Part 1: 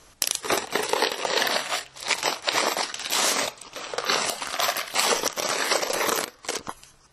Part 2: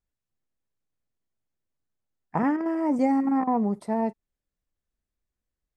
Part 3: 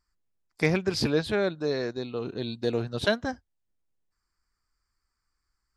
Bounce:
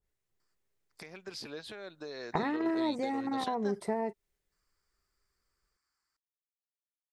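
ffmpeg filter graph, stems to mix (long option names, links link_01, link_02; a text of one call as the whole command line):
ffmpeg -i stem1.wav -i stem2.wav -i stem3.wav -filter_complex "[1:a]acompressor=threshold=-32dB:ratio=6,equalizer=frequency=250:width_type=o:width=0.33:gain=-8,equalizer=frequency=400:width_type=o:width=0.33:gain=9,equalizer=frequency=2000:width_type=o:width=0.33:gain=5,volume=2.5dB[link_01];[2:a]highpass=frequency=550:poles=1,acompressor=threshold=-37dB:ratio=4,adelay=400,volume=-0.5dB,alimiter=level_in=8.5dB:limit=-24dB:level=0:latency=1:release=343,volume=-8.5dB,volume=0dB[link_02];[link_01][link_02]amix=inputs=2:normalize=0,adynamicequalizer=threshold=0.00501:dfrequency=1600:dqfactor=0.7:tfrequency=1600:tqfactor=0.7:attack=5:release=100:ratio=0.375:range=1.5:mode=boostabove:tftype=highshelf" out.wav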